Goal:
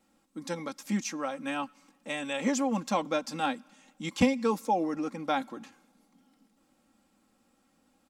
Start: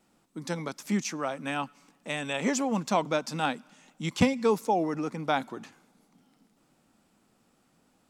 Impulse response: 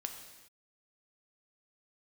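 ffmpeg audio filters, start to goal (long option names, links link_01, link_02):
-af "aecho=1:1:3.7:0.63,volume=-3.5dB"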